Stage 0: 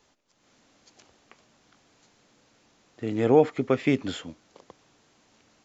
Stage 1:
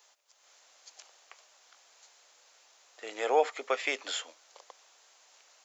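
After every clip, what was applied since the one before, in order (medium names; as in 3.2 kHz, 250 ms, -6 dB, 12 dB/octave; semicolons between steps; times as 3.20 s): high-pass 570 Hz 24 dB/octave; treble shelf 5.5 kHz +11 dB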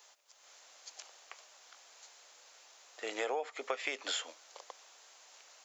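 compression 20:1, threshold -34 dBFS, peak gain reduction 16 dB; trim +2.5 dB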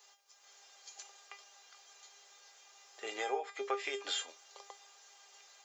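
feedback comb 400 Hz, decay 0.21 s, harmonics all, mix 90%; trim +11.5 dB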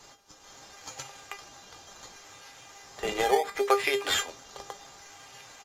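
in parallel at -3 dB: decimation with a swept rate 12×, swing 100% 0.7 Hz; on the sum: resampled via 32 kHz; trim +8 dB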